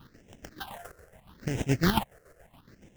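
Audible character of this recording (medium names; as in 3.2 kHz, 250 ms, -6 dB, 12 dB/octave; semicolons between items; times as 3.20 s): aliases and images of a low sample rate 2.4 kHz, jitter 20%; phasing stages 6, 0.77 Hz, lowest notch 230–1200 Hz; chopped level 7.1 Hz, depth 60%, duty 50%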